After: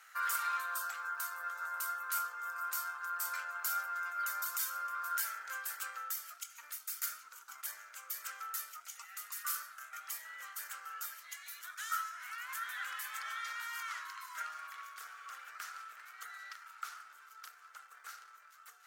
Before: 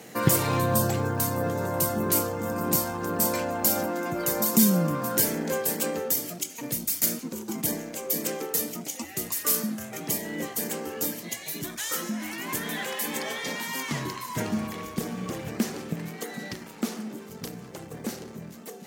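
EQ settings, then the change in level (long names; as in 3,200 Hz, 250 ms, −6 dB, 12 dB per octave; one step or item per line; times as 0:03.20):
four-pole ladder high-pass 1,300 Hz, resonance 85%
−1.0 dB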